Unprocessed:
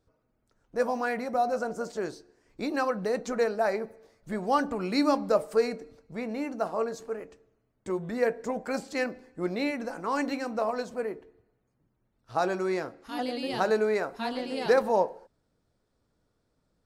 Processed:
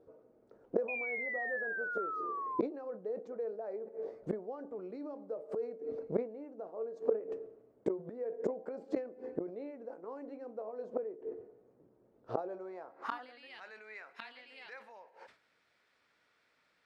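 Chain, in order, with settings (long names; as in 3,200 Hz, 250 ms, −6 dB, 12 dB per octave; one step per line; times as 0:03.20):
brickwall limiter −20.5 dBFS, peak gain reduction 9 dB
gate with flip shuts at −29 dBFS, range −25 dB
band-pass filter sweep 450 Hz → 2,200 Hz, 0:12.41–0:13.58
sound drawn into the spectrogram fall, 0:00.88–0:02.61, 1,000–2,500 Hz −56 dBFS
level that may fall only so fast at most 150 dB per second
level +17.5 dB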